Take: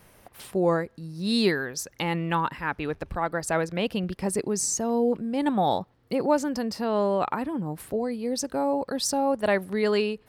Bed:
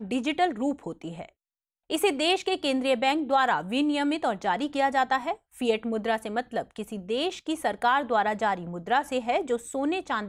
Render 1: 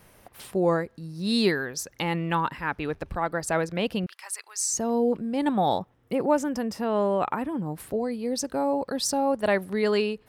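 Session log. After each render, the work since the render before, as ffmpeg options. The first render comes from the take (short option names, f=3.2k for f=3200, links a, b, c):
-filter_complex "[0:a]asettb=1/sr,asplit=3[a][b][c];[a]atrim=end=4.064[d];[b]atrim=start=4.06:end=4.74,asetpts=PTS-STARTPTS,afade=t=in:d=0.004:c=qsin,afade=t=out:st=0.676:d=0.004:c=qsin,highpass=f=1.1k:w=0.5412,highpass=f=1.1k:w=1.3066[e];[c]atrim=start=4.736[f];[d][e]acrossfade=d=0.004:c1=hsin:c2=qsin[g];[g][f]acrossfade=d=0.004:c1=qsin:c2=hsin,asettb=1/sr,asplit=3[h][i][j];[h]atrim=end=5.794[k];[i]atrim=start=5.79:end=7.52,asetpts=PTS-STARTPTS,afade=t=in:d=0.004:c=qsin,afade=t=out:st=1.726:d=0.004:c=qsin,equalizer=f=4.4k:w=5.4:g=-13[l];[j]atrim=start=7.516[m];[k][l]acrossfade=d=0.004:c1=hsin:c2=qsin[n];[n][m]acrossfade=d=0.004:c1=qsin:c2=hsin"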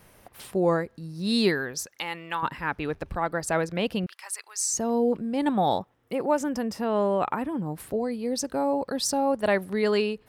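-filter_complex "[0:a]asettb=1/sr,asplit=3[a][b][c];[a]atrim=end=1.864[d];[b]atrim=start=1.86:end=2.43,asetpts=PTS-STARTPTS,afade=t=in:d=0.004:c=qsin,afade=t=out:st=0.566:d=0.004:c=qsin,highpass=f=1.2k:p=1[e];[c]atrim=start=2.426[f];[d][e]acrossfade=d=0.004:c1=hsin:c2=qsin[g];[g][f]acrossfade=d=0.004:c1=qsin:c2=hsin,asettb=1/sr,asplit=3[h][i][j];[h]atrim=end=5.814[k];[i]atrim=start=5.81:end=6.41,asetpts=PTS-STARTPTS,afade=t=in:d=0.004:c=qsin,afade=t=out:st=0.596:d=0.004:c=qsin,lowshelf=f=260:g=-8[l];[j]atrim=start=6.406[m];[k][l]acrossfade=d=0.004:c1=hsin:c2=qsin[n];[n][m]acrossfade=d=0.004:c1=qsin:c2=hsin"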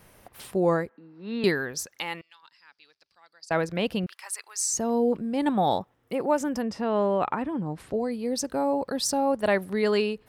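-filter_complex "[0:a]asettb=1/sr,asplit=3[a][b][c];[a]atrim=end=0.894[d];[b]atrim=start=0.89:end=1.44,asetpts=PTS-STARTPTS,afade=t=in:d=0.004:c=qsin,afade=t=out:st=0.546:d=0.004:c=qsin,highpass=f=270:w=0.5412,highpass=f=270:w=1.3066,equalizer=f=360:t=q:w=4:g=-4,equalizer=f=600:t=q:w=4:g=-7,equalizer=f=870:t=q:w=4:g=3,equalizer=f=1.4k:t=q:w=4:g=4,lowpass=f=2.3k:w=0.5412,lowpass=f=2.3k:w=1.3066[e];[c]atrim=start=1.436[f];[d][e]acrossfade=d=0.004:c1=hsin:c2=qsin[g];[g][f]acrossfade=d=0.004:c1=qsin:c2=hsin,asettb=1/sr,asplit=3[h][i][j];[h]atrim=end=2.214[k];[i]atrim=start=2.21:end=3.51,asetpts=PTS-STARTPTS,afade=t=in:d=0.004:c=qsin,afade=t=out:st=1.296:d=0.004:c=qsin,bandpass=f=4.8k:t=q:w=6.2[l];[j]atrim=start=3.506[m];[k][l]acrossfade=d=0.004:c1=hsin:c2=qsin[n];[n][m]acrossfade=d=0.004:c1=qsin:c2=hsin,asettb=1/sr,asplit=3[o][p][q];[o]atrim=end=6.624[r];[p]atrim=start=6.62:end=7.94,asetpts=PTS-STARTPTS,afade=t=in:d=0.004:c=qsin,afade=t=out:st=1.316:d=0.004:c=qsin,lowpass=6k[s];[q]atrim=start=7.936[t];[r][s]acrossfade=d=0.004:c1=hsin:c2=qsin[u];[u][t]acrossfade=d=0.004:c1=qsin:c2=hsin"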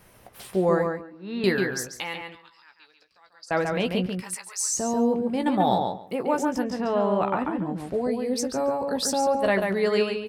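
-filter_complex "[0:a]asplit=2[a][b];[b]adelay=16,volume=-8dB[c];[a][c]amix=inputs=2:normalize=0,asplit=2[d][e];[e]adelay=140,lowpass=f=3.7k:p=1,volume=-4dB,asplit=2[f][g];[g]adelay=140,lowpass=f=3.7k:p=1,volume=0.17,asplit=2[h][i];[i]adelay=140,lowpass=f=3.7k:p=1,volume=0.17[j];[d][f][h][j]amix=inputs=4:normalize=0"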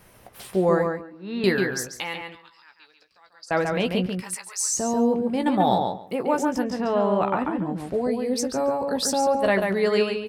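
-af "volume=1.5dB"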